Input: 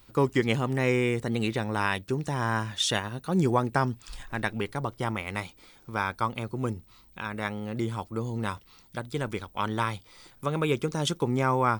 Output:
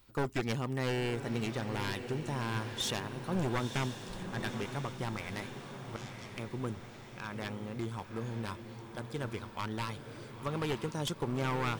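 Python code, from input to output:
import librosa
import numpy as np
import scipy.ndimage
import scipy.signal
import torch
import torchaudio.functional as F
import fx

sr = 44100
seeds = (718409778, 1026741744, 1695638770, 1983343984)

y = np.minimum(x, 2.0 * 10.0 ** (-22.0 / 20.0) - x)
y = fx.bandpass_q(y, sr, hz=5900.0, q=2.3, at=(5.96, 6.36))
y = fx.echo_diffused(y, sr, ms=959, feedback_pct=56, wet_db=-8.5)
y = y * 10.0 ** (-7.0 / 20.0)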